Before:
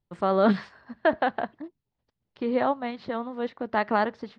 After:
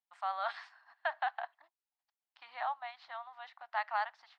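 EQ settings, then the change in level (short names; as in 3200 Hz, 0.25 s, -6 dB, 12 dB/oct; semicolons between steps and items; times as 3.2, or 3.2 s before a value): elliptic high-pass 730 Hz, stop band 40 dB; -7.5 dB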